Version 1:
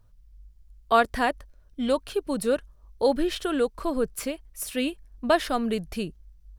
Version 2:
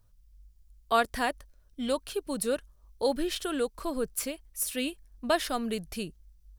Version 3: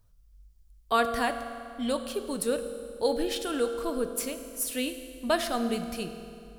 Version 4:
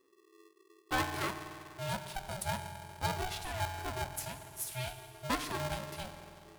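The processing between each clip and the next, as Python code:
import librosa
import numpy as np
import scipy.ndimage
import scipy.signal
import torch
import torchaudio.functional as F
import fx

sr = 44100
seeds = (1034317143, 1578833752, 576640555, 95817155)

y1 = fx.high_shelf(x, sr, hz=3900.0, db=9.5)
y1 = y1 * librosa.db_to_amplitude(-5.5)
y2 = fx.rev_fdn(y1, sr, rt60_s=2.5, lf_ratio=1.05, hf_ratio=0.8, size_ms=13.0, drr_db=7.0)
y3 = y2 * np.sign(np.sin(2.0 * np.pi * 380.0 * np.arange(len(y2)) / sr))
y3 = y3 * librosa.db_to_amplitude(-8.0)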